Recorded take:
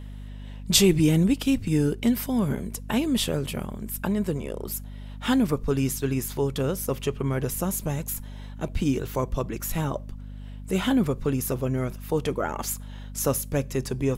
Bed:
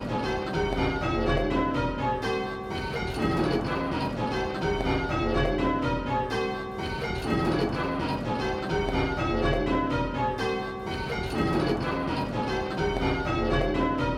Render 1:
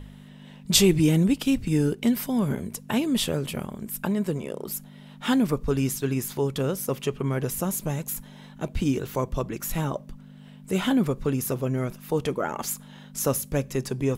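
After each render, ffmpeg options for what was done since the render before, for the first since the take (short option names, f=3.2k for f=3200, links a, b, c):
-af "bandreject=f=50:t=h:w=4,bandreject=f=100:t=h:w=4"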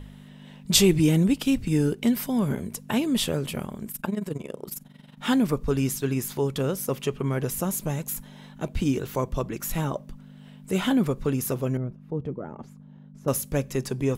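-filter_complex "[0:a]asettb=1/sr,asplit=3[a][b][c];[a]atrim=end=3.914[d];[b]atrim=start=3.91:end=5.18,asetpts=PTS-STARTPTS,afade=t=in:d=0.004:c=qsin,afade=t=out:st=1.266:d=0.004:c=qsin,tremolo=f=22:d=0.824[e];[c]atrim=start=5.176[f];[d][e]acrossfade=d=0.004:c1=hsin:c2=qsin[g];[g][f]acrossfade=d=0.004:c1=qsin:c2=hsin,asettb=1/sr,asplit=3[h][i][j];[h]atrim=end=11.774[k];[i]atrim=start=11.77:end=13.28,asetpts=PTS-STARTPTS,afade=t=in:d=0.004:c=qsin,afade=t=out:st=1.506:d=0.004:c=qsin,bandpass=f=110:t=q:w=0.53[l];[j]atrim=start=13.276[m];[k][l]acrossfade=d=0.004:c1=hsin:c2=qsin[n];[n][m]acrossfade=d=0.004:c1=qsin:c2=hsin"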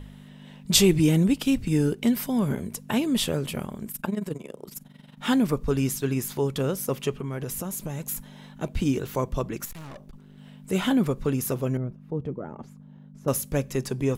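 -filter_complex "[0:a]asettb=1/sr,asplit=3[a][b][c];[a]atrim=end=4.344[d];[b]atrim=start=4.34:end=4.75,asetpts=PTS-STARTPTS,afade=t=in:d=0.004:c=qsin,afade=t=out:st=0.406:d=0.004:c=qsin,acrossover=split=130|6600[e][f][g];[e]acompressor=threshold=-57dB:ratio=4[h];[f]acompressor=threshold=-35dB:ratio=4[i];[g]acompressor=threshold=-56dB:ratio=4[j];[h][i][j]amix=inputs=3:normalize=0[k];[c]atrim=start=4.746[l];[d][k]acrossfade=d=0.004:c1=hsin:c2=qsin[m];[m][l]acrossfade=d=0.004:c1=qsin:c2=hsin,asettb=1/sr,asplit=3[n][o][p];[n]atrim=end=7.104[q];[o]atrim=start=7.1:end=8.03,asetpts=PTS-STARTPTS,afade=t=in:d=0.004:c=qsin,afade=t=out:st=0.926:d=0.004:c=qsin,acompressor=threshold=-28dB:ratio=5:attack=3.2:release=140:knee=1:detection=peak[r];[p]atrim=start=8.026[s];[q][r]acrossfade=d=0.004:c1=hsin:c2=qsin[t];[t][s]acrossfade=d=0.004:c1=qsin:c2=hsin,asettb=1/sr,asplit=3[u][v][w];[u]atrim=end=9.654[x];[v]atrim=start=9.65:end=10.38,asetpts=PTS-STARTPTS,afade=t=in:d=0.004:c=qsin,afade=t=out:st=0.726:d=0.004:c=qsin,aeval=exprs='(tanh(89.1*val(0)+0.6)-tanh(0.6))/89.1':c=same[y];[w]atrim=start=10.376[z];[x][y]acrossfade=d=0.004:c1=hsin:c2=qsin[aa];[aa][z]acrossfade=d=0.004:c1=qsin:c2=hsin"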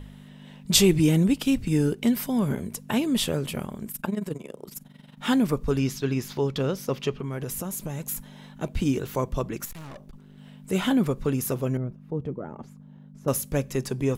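-filter_complex "[0:a]asettb=1/sr,asplit=3[a][b][c];[a]atrim=end=5.784[d];[b]atrim=start=5.78:end=7.23,asetpts=PTS-STARTPTS,afade=t=in:d=0.004:c=qsin,afade=t=out:st=1.446:d=0.004:c=qsin,highshelf=f=6.8k:t=q:w=1.5:g=-9[e];[c]atrim=start=7.226[f];[d][e]acrossfade=d=0.004:c1=hsin:c2=qsin[g];[g][f]acrossfade=d=0.004:c1=qsin:c2=hsin"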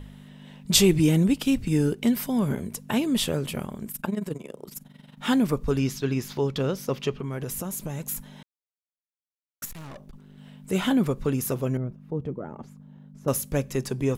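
-filter_complex "[0:a]asplit=3[a][b][c];[a]atrim=end=8.43,asetpts=PTS-STARTPTS,afade=t=out:st=8.426:d=0.004:c=hsin[d];[b]atrim=start=8.43:end=9.62,asetpts=PTS-STARTPTS,volume=0[e];[c]atrim=start=9.62,asetpts=PTS-STARTPTS,afade=t=in:d=0.004:c=hsin[f];[d][e][f]concat=n=3:v=0:a=1"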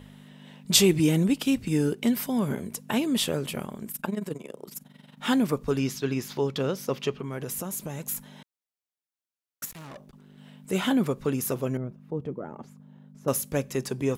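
-af "highpass=f=170:p=1"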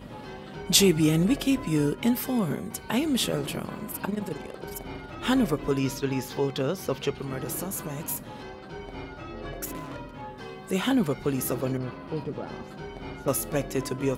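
-filter_complex "[1:a]volume=-12.5dB[a];[0:a][a]amix=inputs=2:normalize=0"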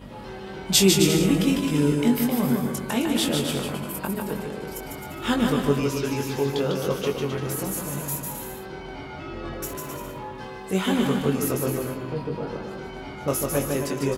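-filter_complex "[0:a]asplit=2[a][b];[b]adelay=21,volume=-5dB[c];[a][c]amix=inputs=2:normalize=0,aecho=1:1:150|262.5|346.9|410.2|457.6:0.631|0.398|0.251|0.158|0.1"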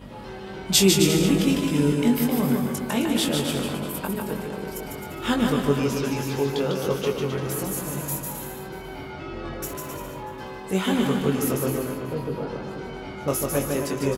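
-filter_complex "[0:a]asplit=2[a][b];[b]adelay=489.8,volume=-11dB,highshelf=f=4k:g=-11[c];[a][c]amix=inputs=2:normalize=0"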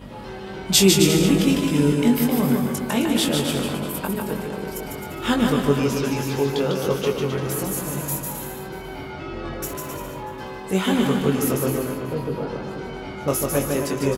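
-af "volume=2.5dB,alimiter=limit=-2dB:level=0:latency=1"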